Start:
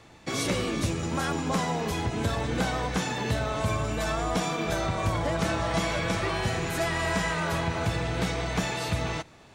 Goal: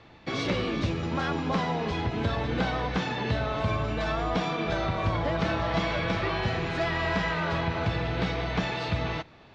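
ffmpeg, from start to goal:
-af "lowpass=f=4500:w=0.5412,lowpass=f=4500:w=1.3066"

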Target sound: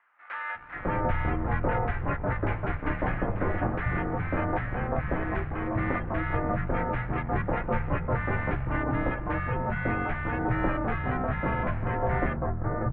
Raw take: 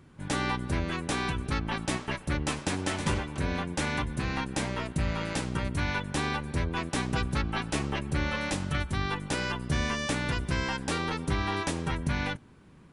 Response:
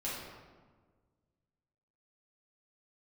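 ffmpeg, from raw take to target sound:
-filter_complex "[0:a]asplit=2[s0][s1];[s1]acrusher=samples=27:mix=1:aa=0.000001:lfo=1:lforange=16.2:lforate=0.66,volume=0.631[s2];[s0][s2]amix=inputs=2:normalize=0,asubboost=boost=6.5:cutoff=74,acrossover=split=300|1500[s3][s4][s5];[s4]adelay=550[s6];[s3]adelay=790[s7];[s7][s6][s5]amix=inputs=3:normalize=0,highpass=f=180:t=q:w=0.5412,highpass=f=180:t=q:w=1.307,lowpass=f=2200:t=q:w=0.5176,lowpass=f=2200:t=q:w=0.7071,lowpass=f=2200:t=q:w=1.932,afreqshift=-270,volume=2"

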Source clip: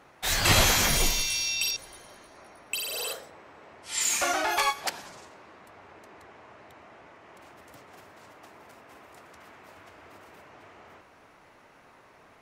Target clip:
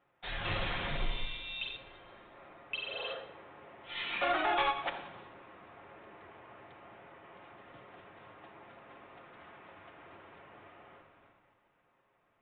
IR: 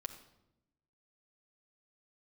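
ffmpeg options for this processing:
-filter_complex "[0:a]aresample=8000,asoftclip=type=hard:threshold=0.0794,aresample=44100,dynaudnorm=f=260:g=13:m=2.24,agate=range=0.398:threshold=0.00224:ratio=16:detection=peak[s0];[1:a]atrim=start_sample=2205[s1];[s0][s1]afir=irnorm=-1:irlink=0,volume=0.422"

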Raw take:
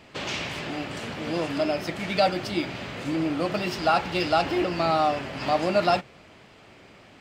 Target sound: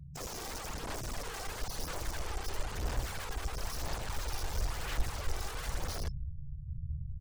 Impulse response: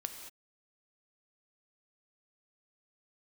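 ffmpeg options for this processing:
-filter_complex "[0:a]acrossover=split=480|3200[s0][s1][s2];[s0]acompressor=threshold=0.0398:ratio=4[s3];[s1]acompressor=threshold=0.0355:ratio=4[s4];[s2]acompressor=threshold=0.00708:ratio=4[s5];[s3][s4][s5]amix=inputs=3:normalize=0,afftfilt=real='re*(1-between(b*sr/4096,190,5100))':imag='im*(1-between(b*sr/4096,190,5100))':win_size=4096:overlap=0.75,asplit=2[s6][s7];[s7]adelay=14,volume=0.531[s8];[s6][s8]amix=inputs=2:normalize=0,aecho=1:1:79|158|237:0.447|0.125|0.035,acrossover=split=160|1000|4100[s9][s10][s11][s12];[s9]aeval=exprs='(mod(119*val(0)+1,2)-1)/119':c=same[s13];[s13][s10][s11][s12]amix=inputs=4:normalize=0,acrossover=split=6200[s14][s15];[s15]acompressor=threshold=0.00158:ratio=4:attack=1:release=60[s16];[s14][s16]amix=inputs=2:normalize=0,highshelf=f=2200:g=-10,aeval=exprs='(mod(168*val(0)+1,2)-1)/168':c=same,afftfilt=real='re*gte(hypot(re,im),0.00126)':imag='im*gte(hypot(re,im),0.00126)':win_size=1024:overlap=0.75,aphaser=in_gain=1:out_gain=1:delay=2.6:decay=0.34:speed=1:type=sinusoidal,asubboost=boost=11:cutoff=66,volume=2.37"

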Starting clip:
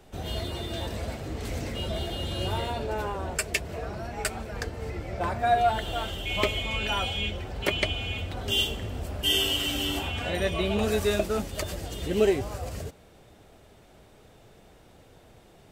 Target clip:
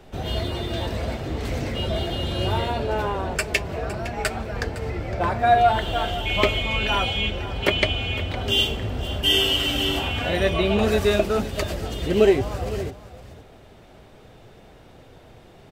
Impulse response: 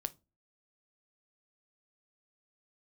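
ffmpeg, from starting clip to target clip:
-filter_complex "[0:a]aecho=1:1:510:0.178,asplit=2[s0][s1];[1:a]atrim=start_sample=2205,lowpass=5800[s2];[s1][s2]afir=irnorm=-1:irlink=0,volume=1.12[s3];[s0][s3]amix=inputs=2:normalize=0"

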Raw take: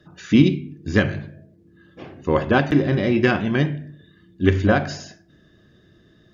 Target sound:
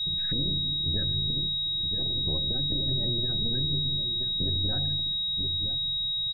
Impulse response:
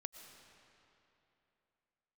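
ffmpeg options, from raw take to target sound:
-filter_complex "[0:a]aeval=exprs='if(lt(val(0),0),0.447*val(0),val(0))':c=same,acompressor=threshold=0.0158:ratio=3,tremolo=f=240:d=0.788,equalizer=f=220:t=o:w=0.37:g=-8,aecho=1:1:972:0.237,asettb=1/sr,asplit=3[s0][s1][s2];[s0]atrim=end=2.304[s3];[s1]atrim=start=2.3:end=4.56,asetpts=PTS-STARTPTS,afade=t=in:d=0.004:c=qsin,afade=t=out:st=2.256:d=0.004:c=qsin,acrossover=split=110|460[s4][s5][s6];[s4]acompressor=threshold=0.00447:ratio=4[s7];[s5]acompressor=threshold=0.00708:ratio=4[s8];[s6]acompressor=threshold=0.00398:ratio=4[s9];[s7][s8][s9]amix=inputs=3:normalize=0[s10];[s2]atrim=start=4.556[s11];[s3][s10]acrossfade=d=0.004:c1=hsin:c2=qsin[s12];[s12][s11]acrossfade=d=0.004:c1=qsin:c2=hsin,bass=f=250:g=12,treble=f=4000:g=-12,alimiter=level_in=1.58:limit=0.0631:level=0:latency=1:release=57,volume=0.631,aeval=exprs='val(0)+0.0251*sin(2*PI*3800*n/s)':c=same,afftdn=nr=28:nf=-42,volume=1.88"

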